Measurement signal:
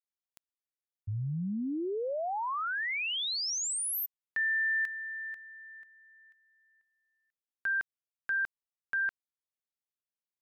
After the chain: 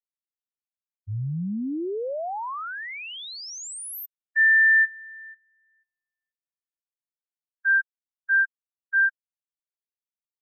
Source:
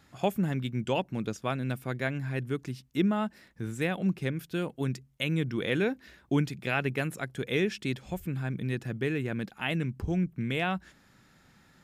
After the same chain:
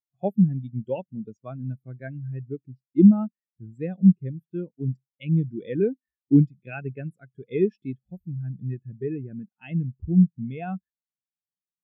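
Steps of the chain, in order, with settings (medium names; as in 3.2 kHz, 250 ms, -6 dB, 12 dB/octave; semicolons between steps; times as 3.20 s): treble shelf 6.1 kHz +8 dB; spectral contrast expander 2.5:1; trim +8.5 dB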